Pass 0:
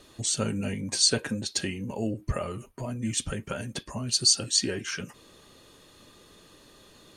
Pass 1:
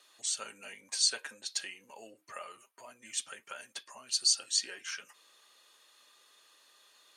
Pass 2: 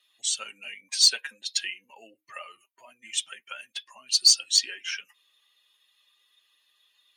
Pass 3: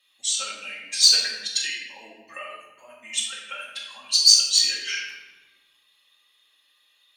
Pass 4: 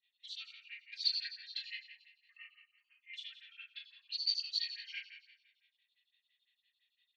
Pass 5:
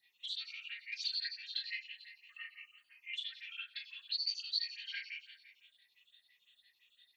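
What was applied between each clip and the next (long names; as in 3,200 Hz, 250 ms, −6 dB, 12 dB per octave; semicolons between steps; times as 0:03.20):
high-pass filter 980 Hz 12 dB per octave; level −5.5 dB
spectral dynamics exaggerated over time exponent 1.5; meter weighting curve D; in parallel at −3.5 dB: soft clipping −14.5 dBFS, distortion −13 dB; on the sum: level −2 dB
rectangular room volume 740 cubic metres, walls mixed, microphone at 2.2 metres
elliptic band-pass filter 1,900–4,400 Hz, stop band 60 dB; repeating echo 222 ms, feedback 39%, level −19.5 dB; phaser with staggered stages 5.9 Hz; level −8.5 dB
rippled gain that drifts along the octave scale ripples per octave 0.78, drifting +2.4 Hz, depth 11 dB; downward compressor 2 to 1, threshold −52 dBFS, peak gain reduction 14.5 dB; level +8.5 dB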